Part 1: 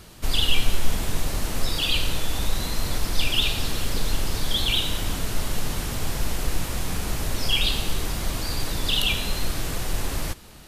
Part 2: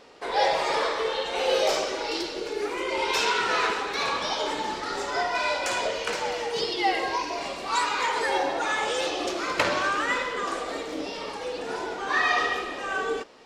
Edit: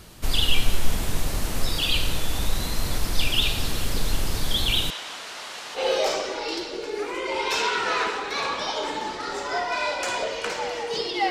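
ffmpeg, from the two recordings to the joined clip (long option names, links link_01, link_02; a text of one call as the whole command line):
ffmpeg -i cue0.wav -i cue1.wav -filter_complex "[0:a]asettb=1/sr,asplit=3[link_01][link_02][link_03];[link_01]atrim=end=4.904[link_04];[link_02]atrim=start=4.9:end=5.8,asetpts=PTS-STARTPTS,afade=type=in:duration=0.004:curve=qsin,afade=type=out:start_time=0.896:duration=0.004:curve=qsin,highpass=750,lowpass=5600[link_05];[link_03]atrim=start=5.796[link_06];[link_04][link_05]acrossfade=duration=0.004:curve1=hsin:curve2=qsin[link_07];[link_07][link_06]acrossfade=duration=0.004:curve1=qsin:curve2=hsin,apad=whole_dur=11.3,atrim=end=11.3,atrim=end=5.8,asetpts=PTS-STARTPTS[link_08];[1:a]atrim=start=1.37:end=6.93,asetpts=PTS-STARTPTS[link_09];[link_08][link_09]acrossfade=duration=0.06:curve1=tri:curve2=tri" out.wav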